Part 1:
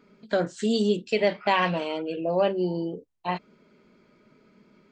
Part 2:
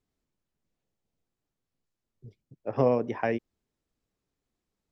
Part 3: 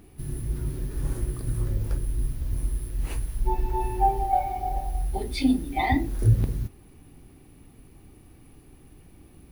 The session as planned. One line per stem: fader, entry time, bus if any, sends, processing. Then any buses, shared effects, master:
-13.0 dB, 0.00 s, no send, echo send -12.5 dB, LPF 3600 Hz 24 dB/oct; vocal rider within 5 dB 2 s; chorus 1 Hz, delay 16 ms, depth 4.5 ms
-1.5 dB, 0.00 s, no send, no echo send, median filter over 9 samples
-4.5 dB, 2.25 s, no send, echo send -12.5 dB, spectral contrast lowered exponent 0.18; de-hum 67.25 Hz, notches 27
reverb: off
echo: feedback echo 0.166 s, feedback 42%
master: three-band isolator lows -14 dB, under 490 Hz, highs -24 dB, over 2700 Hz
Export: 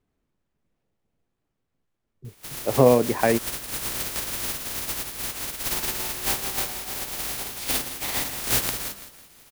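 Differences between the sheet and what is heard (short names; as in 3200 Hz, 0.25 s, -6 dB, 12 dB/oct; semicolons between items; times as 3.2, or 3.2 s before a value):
stem 1: muted; stem 2 -1.5 dB -> +7.5 dB; master: missing three-band isolator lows -14 dB, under 490 Hz, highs -24 dB, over 2700 Hz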